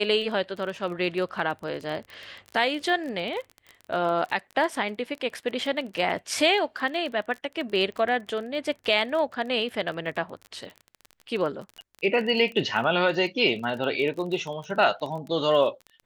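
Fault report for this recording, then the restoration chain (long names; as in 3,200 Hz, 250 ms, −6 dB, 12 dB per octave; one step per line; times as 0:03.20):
surface crackle 24 per second −32 dBFS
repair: click removal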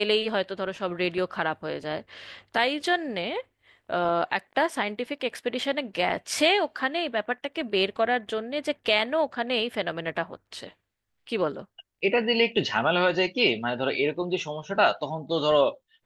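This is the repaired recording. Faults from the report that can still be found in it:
none of them is left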